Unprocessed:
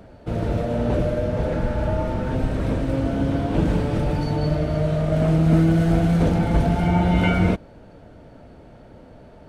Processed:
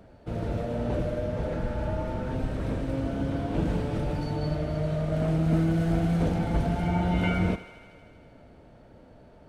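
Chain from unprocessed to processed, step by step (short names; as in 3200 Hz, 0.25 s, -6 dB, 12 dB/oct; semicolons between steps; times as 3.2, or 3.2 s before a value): thinning echo 79 ms, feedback 79%, high-pass 420 Hz, level -14 dB; gain -7 dB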